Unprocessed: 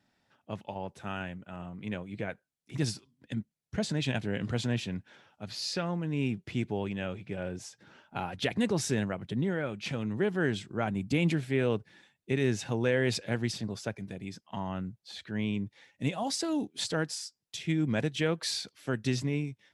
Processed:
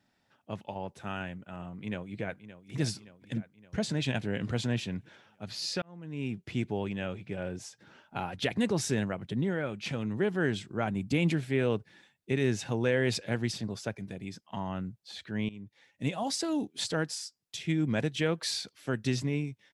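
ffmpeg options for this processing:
-filter_complex "[0:a]asplit=2[a][b];[b]afade=t=in:st=1.66:d=0.01,afade=t=out:st=2.8:d=0.01,aecho=0:1:570|1140|1710|2280|2850|3420:0.211349|0.126809|0.0760856|0.0456514|0.0273908|0.0164345[c];[a][c]amix=inputs=2:normalize=0,asplit=3[d][e][f];[d]atrim=end=5.82,asetpts=PTS-STARTPTS,afade=t=out:st=5.816:d=0.004:c=hsin[g];[e]atrim=start=5.82:end=15.49,asetpts=PTS-STARTPTS,afade=t=in:d=0.7,afade=t=out:st=9.666:d=0.004:c=hsin:silence=0.125893[h];[f]atrim=start=15.49,asetpts=PTS-STARTPTS,afade=t=in:d=0.64:silence=0.125893[i];[g][h][i]concat=n=3:v=0:a=1"

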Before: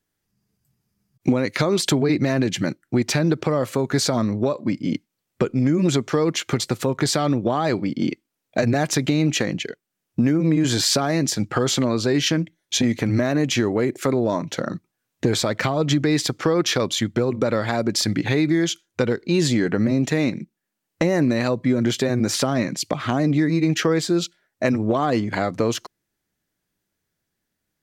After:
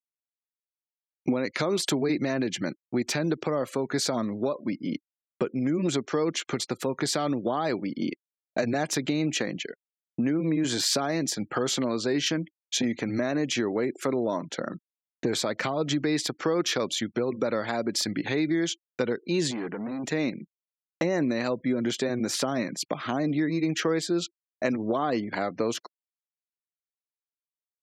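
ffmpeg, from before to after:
-filter_complex "[0:a]asettb=1/sr,asplit=3[a][b][c];[a]atrim=end=19.514[d];[b]atrim=start=19.51:end=20.04,asetpts=PTS-STARTPTS,afade=t=in:d=0.004:c=qsin,afade=t=out:st=0.526:d=0.004:c=qsin,aeval=exprs='(tanh(12.6*val(0)+0.55)-tanh(0.55))/12.6':c=same[e];[c]atrim=start=20.036[f];[d][e]acrossfade=d=0.004:c1=hsin:c2=qsin[g];[g][f]acrossfade=d=0.004:c1=qsin:c2=hsin,highpass=190,afftfilt=real='re*gte(hypot(re,im),0.00891)':imag='im*gte(hypot(re,im),0.00891)':win_size=1024:overlap=0.75,agate=range=-33dB:threshold=-38dB:ratio=3:detection=peak,volume=-5.5dB"

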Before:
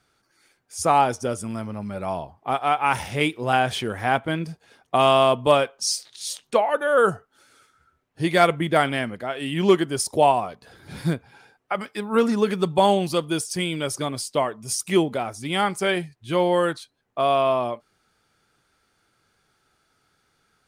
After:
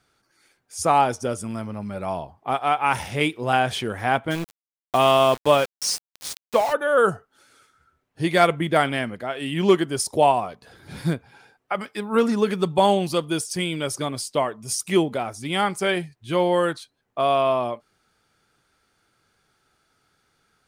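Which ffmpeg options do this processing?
-filter_complex "[0:a]asplit=3[a][b][c];[a]afade=t=out:st=4.3:d=0.02[d];[b]aeval=exprs='val(0)*gte(abs(val(0)),0.0398)':c=same,afade=t=in:st=4.3:d=0.02,afade=t=out:st=6.72:d=0.02[e];[c]afade=t=in:st=6.72:d=0.02[f];[d][e][f]amix=inputs=3:normalize=0"

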